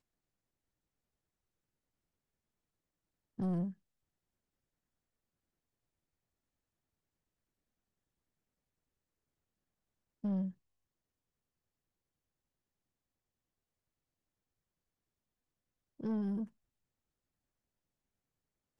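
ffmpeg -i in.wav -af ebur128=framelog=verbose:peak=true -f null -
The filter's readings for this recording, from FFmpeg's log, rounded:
Integrated loudness:
  I:         -38.2 LUFS
  Threshold: -48.8 LUFS
Loudness range:
  LRA:         2.4 LU
  Threshold: -65.1 LUFS
  LRA low:   -46.7 LUFS
  LRA high:  -44.3 LUFS
True peak:
  Peak:      -30.4 dBFS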